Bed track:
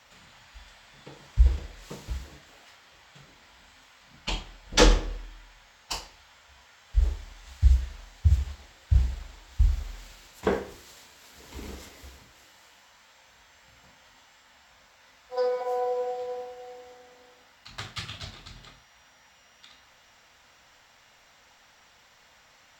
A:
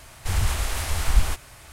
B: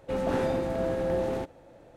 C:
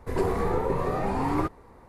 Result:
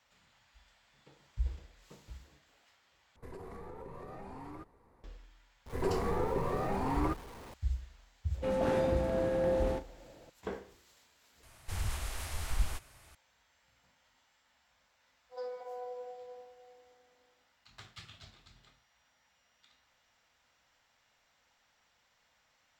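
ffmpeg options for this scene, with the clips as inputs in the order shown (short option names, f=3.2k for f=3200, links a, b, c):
-filter_complex "[3:a]asplit=2[a][b];[0:a]volume=-14.5dB[c];[a]acompressor=threshold=-31dB:ratio=10:attack=13:release=55:knee=1:detection=rms[d];[b]aeval=exprs='val(0)+0.5*0.0112*sgn(val(0))':c=same[e];[2:a]asplit=2[f][g];[g]adelay=40,volume=-11.5dB[h];[f][h]amix=inputs=2:normalize=0[i];[c]asplit=3[j][k][l];[j]atrim=end=3.164[m];[d]atrim=end=1.88,asetpts=PTS-STARTPTS,volume=-13.5dB[n];[k]atrim=start=5.036:end=11.434[o];[1:a]atrim=end=1.72,asetpts=PTS-STARTPTS,volume=-12.5dB[p];[l]atrim=start=13.146[q];[e]atrim=end=1.88,asetpts=PTS-STARTPTS,volume=-7dB,afade=t=in:d=0.004:c=hsin,afade=t=out:st=1.876:d=0.004:c=hsin,adelay=5660[r];[i]atrim=end=1.96,asetpts=PTS-STARTPTS,volume=-3.5dB,afade=t=in:d=0.004:c=hsin,afade=t=out:st=1.956:d=0.004:c=hsin,adelay=367794S[s];[m][n]acrossfade=d=0.004:c1=hsin:c2=hsin[t];[t][o]acrossfade=d=0.004:c1=hsin:c2=hsin[u];[u][p]acrossfade=d=0.004:c1=hsin:c2=hsin[v];[v][q]acrossfade=d=0.004:c1=hsin:c2=hsin[w];[w][r][s]amix=inputs=3:normalize=0"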